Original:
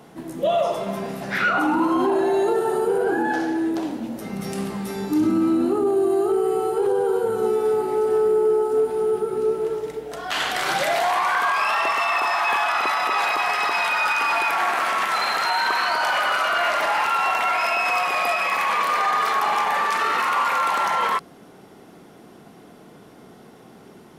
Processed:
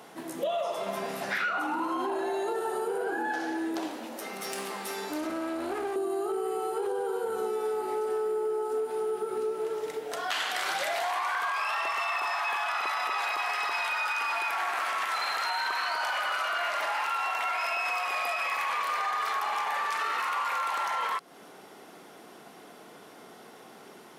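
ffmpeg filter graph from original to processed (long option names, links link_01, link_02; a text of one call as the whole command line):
ffmpeg -i in.wav -filter_complex "[0:a]asettb=1/sr,asplit=3[link_01][link_02][link_03];[link_01]atrim=end=3.884[link_04];[link_02]atrim=start=3.88:end=5.96,asetpts=PTS-STARTPTS,afade=type=in:duration=0.004:curve=qsin,afade=type=out:start_time=2.076:duration=0.004:curve=qsin,highpass=320,aeval=exprs='clip(val(0),-1,0.0251)':channel_layout=same[link_05];[link_03]atrim=start=5.956[link_06];[link_04][link_05]acrossfade=duration=0.004:curve1=hsin:curve2=qsin[link_07];[link_07][link_06]acrossfade=duration=0.004:curve1=qsin:curve2=hsin,highpass=frequency=220:poles=1,lowshelf=frequency=350:gain=-11,acompressor=threshold=-31dB:ratio=4,volume=2dB" out.wav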